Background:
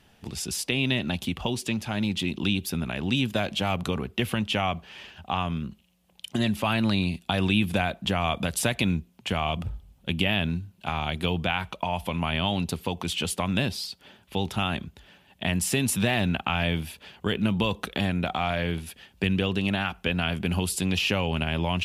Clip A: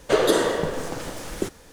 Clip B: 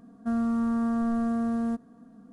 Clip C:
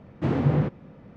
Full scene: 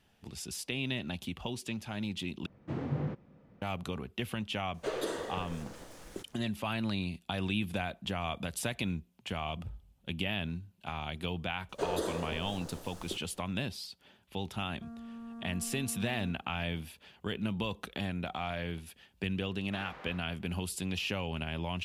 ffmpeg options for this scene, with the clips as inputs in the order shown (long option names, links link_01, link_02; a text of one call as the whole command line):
ffmpeg -i bed.wav -i cue0.wav -i cue1.wav -i cue2.wav -filter_complex "[3:a]asplit=2[link_01][link_02];[1:a]asplit=2[link_03][link_04];[0:a]volume=-9.5dB[link_05];[link_01]crystalizer=i=0.5:c=0[link_06];[link_04]equalizer=frequency=2200:width=1.5:gain=-7.5[link_07];[2:a]acompressor=threshold=-34dB:ratio=6:attack=3.2:release=140:knee=1:detection=peak[link_08];[link_02]highpass=1100[link_09];[link_05]asplit=2[link_10][link_11];[link_10]atrim=end=2.464[link_12];[link_06]atrim=end=1.16,asetpts=PTS-STARTPTS,volume=-12dB[link_13];[link_11]atrim=start=3.616[link_14];[link_03]atrim=end=1.72,asetpts=PTS-STARTPTS,volume=-16dB,afade=type=in:duration=0.004:curve=hsin,afade=type=out:start_time=1.716:duration=0.004:curve=hsin,adelay=4740[link_15];[link_07]atrim=end=1.72,asetpts=PTS-STARTPTS,volume=-14.5dB,afade=type=in:duration=0.004:curve=hsin,afade=type=out:start_time=1.716:duration=0.004:curve=hsin,adelay=11690[link_16];[link_08]atrim=end=2.32,asetpts=PTS-STARTPTS,volume=-9.5dB,afade=type=in:duration=0.004:curve=hsin,afade=type=out:start_time=2.316:duration=0.004:curve=hsin,adelay=14560[link_17];[link_09]atrim=end=1.16,asetpts=PTS-STARTPTS,volume=-9dB,afade=type=in:duration=0.004:curve=hsin,afade=type=out:start_time=1.156:duration=0.004:curve=hsin,adelay=19500[link_18];[link_12][link_13]acrossfade=duration=0.004:curve1=hsin:curve2=hsin[link_19];[link_19][link_14]acrossfade=duration=0.004:curve1=hsin:curve2=hsin[link_20];[link_20][link_15][link_16][link_17][link_18]amix=inputs=5:normalize=0" out.wav